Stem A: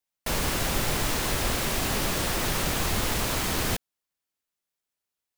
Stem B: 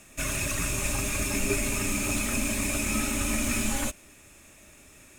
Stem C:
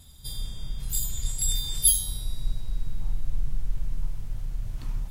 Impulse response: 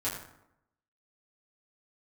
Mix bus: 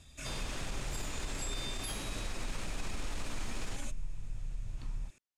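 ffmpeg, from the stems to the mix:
-filter_complex "[0:a]volume=-9dB[link_01];[1:a]highshelf=frequency=3900:gain=6,volume=-13.5dB[link_02];[2:a]acompressor=threshold=-29dB:ratio=2,volume=-5.5dB[link_03];[link_01][link_02]amix=inputs=2:normalize=0,alimiter=level_in=7dB:limit=-24dB:level=0:latency=1:release=28,volume=-7dB,volume=0dB[link_04];[link_03][link_04]amix=inputs=2:normalize=0,lowpass=6900,alimiter=level_in=3.5dB:limit=-24dB:level=0:latency=1:release=42,volume=-3.5dB"

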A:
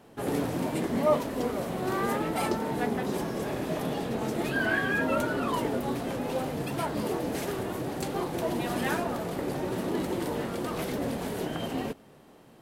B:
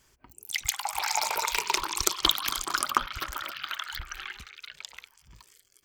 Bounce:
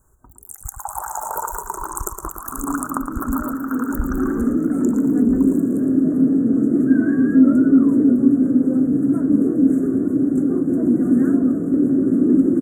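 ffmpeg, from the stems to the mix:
ffmpeg -i stem1.wav -i stem2.wav -filter_complex "[0:a]dynaudnorm=framelen=240:gausssize=13:maxgain=11.5dB,asoftclip=type=hard:threshold=-11.5dB,asplit=3[link_01][link_02][link_03];[link_01]bandpass=frequency=270:width_type=q:width=8,volume=0dB[link_04];[link_02]bandpass=frequency=2290:width_type=q:width=8,volume=-6dB[link_05];[link_03]bandpass=frequency=3010:width_type=q:width=8,volume=-9dB[link_06];[link_04][link_05][link_06]amix=inputs=3:normalize=0,adelay=2350,volume=2.5dB[link_07];[1:a]acompressor=threshold=-29dB:ratio=6,volume=3dB,asplit=2[link_08][link_09];[link_09]volume=-7.5dB,aecho=0:1:114|228|342|456:1|0.29|0.0841|0.0244[link_10];[link_07][link_08][link_10]amix=inputs=3:normalize=0,dynaudnorm=framelen=610:gausssize=3:maxgain=10dB,asuperstop=centerf=3300:order=12:qfactor=0.58,lowshelf=frequency=110:gain=9.5" out.wav

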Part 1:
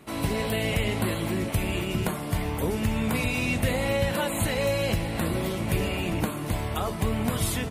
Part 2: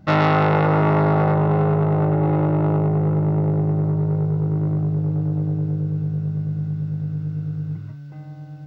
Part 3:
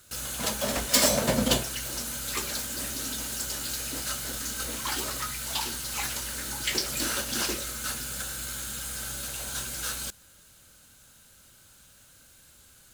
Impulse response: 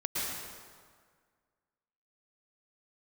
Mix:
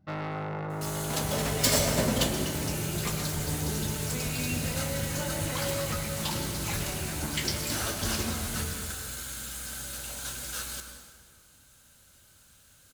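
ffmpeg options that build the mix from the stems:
-filter_complex "[0:a]asplit=2[link_01][link_02];[link_02]adelay=10.6,afreqshift=-0.81[link_03];[link_01][link_03]amix=inputs=2:normalize=1,adelay=1000,volume=-12dB,asplit=2[link_04][link_05];[link_05]volume=-3.5dB[link_06];[1:a]aeval=exprs='clip(val(0),-1,0.224)':channel_layout=same,volume=-17dB[link_07];[2:a]adelay=700,volume=-5.5dB,asplit=2[link_08][link_09];[link_09]volume=-10.5dB[link_10];[3:a]atrim=start_sample=2205[link_11];[link_06][link_10]amix=inputs=2:normalize=0[link_12];[link_12][link_11]afir=irnorm=-1:irlink=0[link_13];[link_04][link_07][link_08][link_13]amix=inputs=4:normalize=0,equalizer=frequency=81:width_type=o:width=0.38:gain=4"

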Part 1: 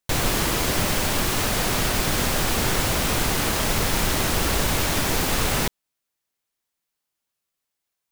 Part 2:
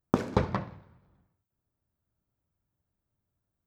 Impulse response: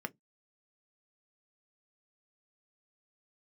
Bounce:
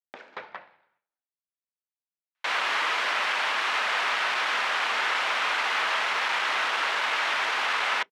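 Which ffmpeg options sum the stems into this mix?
-filter_complex "[0:a]adelay=2350,volume=2.5dB,asplit=2[link_01][link_02];[link_02]volume=-10.5dB[link_03];[1:a]agate=range=-33dB:threshold=-54dB:ratio=3:detection=peak,equalizer=frequency=1100:width=3.2:gain=-9.5,dynaudnorm=framelen=200:gausssize=3:maxgain=4dB,volume=-2.5dB[link_04];[2:a]atrim=start_sample=2205[link_05];[link_03][link_05]afir=irnorm=-1:irlink=0[link_06];[link_01][link_04][link_06]amix=inputs=3:normalize=0,asoftclip=type=hard:threshold=-17dB,asuperpass=centerf=1700:order=4:qfactor=0.69"

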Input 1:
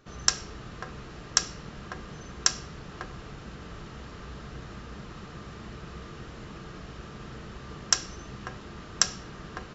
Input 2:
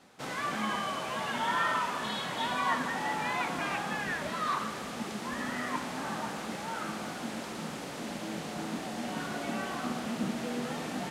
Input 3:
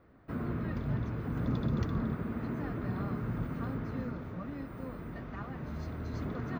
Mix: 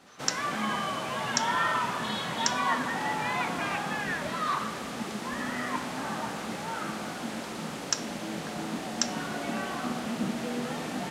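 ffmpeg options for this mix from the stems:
ffmpeg -i stem1.wav -i stem2.wav -i stem3.wav -filter_complex "[0:a]highpass=980,volume=-5.5dB[link_01];[1:a]volume=2dB[link_02];[2:a]highpass=frequency=130:width=0.5412,highpass=frequency=130:width=1.3066,adelay=350,volume=-9.5dB[link_03];[link_01][link_02][link_03]amix=inputs=3:normalize=0" out.wav

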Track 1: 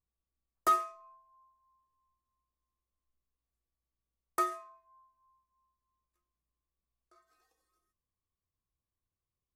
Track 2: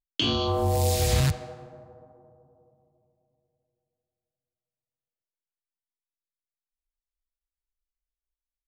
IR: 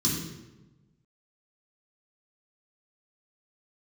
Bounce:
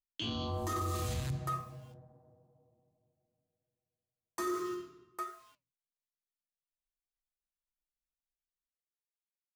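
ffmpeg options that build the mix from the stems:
-filter_complex "[0:a]acrusher=bits=8:mix=0:aa=0.000001,flanger=delay=6.5:depth=4.4:regen=-72:speed=1.5:shape=sinusoidal,equalizer=frequency=670:width=5.4:gain=-5,volume=1dB,asplit=3[link_01][link_02][link_03];[link_02]volume=-3.5dB[link_04];[link_03]volume=-6dB[link_05];[1:a]acompressor=threshold=-25dB:ratio=3,volume=-10dB,asplit=2[link_06][link_07];[link_07]volume=-19.5dB[link_08];[2:a]atrim=start_sample=2205[link_09];[link_04][link_08]amix=inputs=2:normalize=0[link_10];[link_10][link_09]afir=irnorm=-1:irlink=0[link_11];[link_05]aecho=0:1:805:1[link_12];[link_01][link_06][link_11][link_12]amix=inputs=4:normalize=0,alimiter=level_in=3dB:limit=-24dB:level=0:latency=1:release=11,volume=-3dB"

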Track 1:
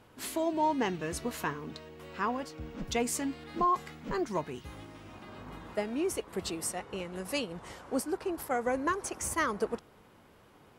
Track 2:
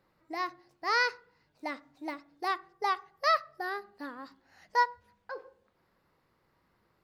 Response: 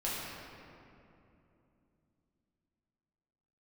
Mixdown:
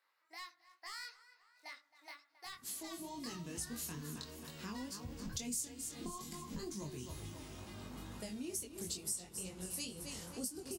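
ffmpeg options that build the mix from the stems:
-filter_complex "[0:a]bass=frequency=250:gain=3,treble=frequency=4000:gain=12,dynaudnorm=framelen=210:gausssize=11:maxgain=9dB,flanger=delay=8.4:depth=5.2:regen=-76:speed=0.34:shape=sinusoidal,adelay=2450,volume=-3.5dB,asplit=2[link_01][link_02];[link_02]volume=-11.5dB[link_03];[1:a]highpass=1300,acompressor=threshold=-32dB:ratio=6,asoftclip=type=hard:threshold=-31.5dB,volume=1dB,asplit=2[link_04][link_05];[link_05]volume=-23dB[link_06];[link_03][link_06]amix=inputs=2:normalize=0,aecho=0:1:268|536|804|1072|1340:1|0.37|0.137|0.0507|0.0187[link_07];[link_01][link_04][link_07]amix=inputs=3:normalize=0,acrossover=split=300|3000[link_08][link_09][link_10];[link_09]acompressor=threshold=-53dB:ratio=2.5[link_11];[link_08][link_11][link_10]amix=inputs=3:normalize=0,flanger=delay=20:depth=3.8:speed=2.2,acompressor=threshold=-42dB:ratio=2.5"

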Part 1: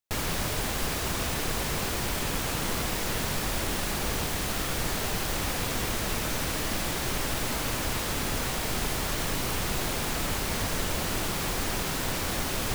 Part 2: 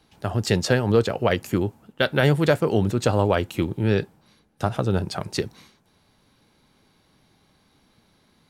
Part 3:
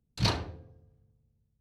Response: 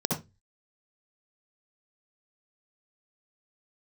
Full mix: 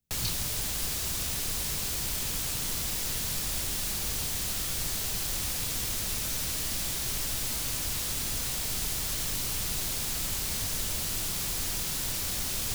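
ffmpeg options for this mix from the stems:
-filter_complex "[0:a]volume=-4.5dB[link_01];[2:a]volume=-9dB[link_02];[link_01][link_02]amix=inputs=2:normalize=0,highshelf=frequency=3000:gain=8,acrossover=split=170|3000[link_03][link_04][link_05];[link_04]acompressor=threshold=-42dB:ratio=6[link_06];[link_03][link_06][link_05]amix=inputs=3:normalize=0"

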